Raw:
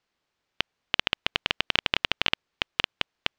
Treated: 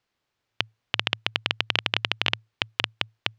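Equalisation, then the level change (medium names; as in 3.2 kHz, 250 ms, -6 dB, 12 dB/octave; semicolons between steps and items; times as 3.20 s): peaking EQ 110 Hz +14 dB 0.27 oct; 0.0 dB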